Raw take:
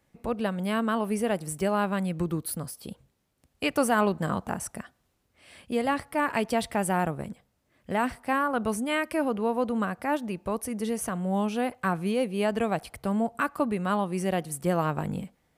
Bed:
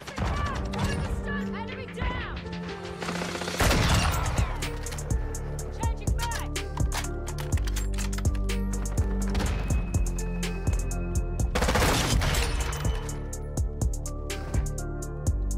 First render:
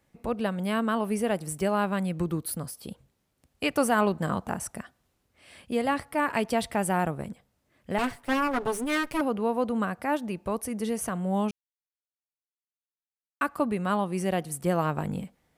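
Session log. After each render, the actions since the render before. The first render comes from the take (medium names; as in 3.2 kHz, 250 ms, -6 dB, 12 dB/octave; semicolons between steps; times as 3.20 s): 7.98–9.21 s: comb filter that takes the minimum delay 7.1 ms; 11.51–13.41 s: mute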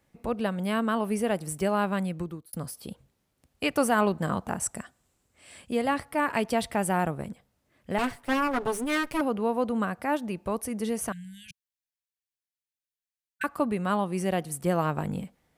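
2.00–2.53 s: fade out; 4.62–5.72 s: peaking EQ 7.7 kHz +11.5 dB 0.39 oct; 11.12–13.44 s: brick-wall FIR band-stop 170–1500 Hz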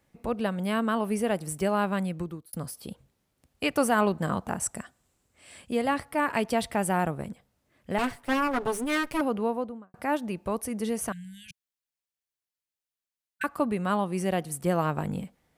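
9.37–9.94 s: studio fade out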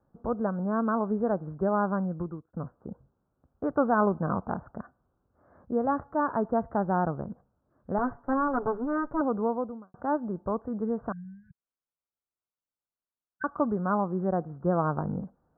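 steep low-pass 1.5 kHz 72 dB/octave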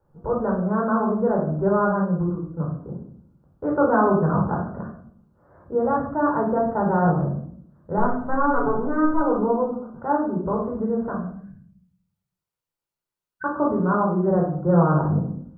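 simulated room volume 880 m³, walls furnished, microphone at 4.6 m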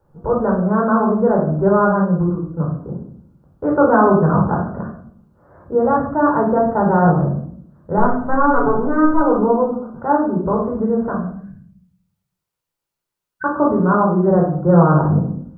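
trim +6 dB; peak limiter -1 dBFS, peak gain reduction 1 dB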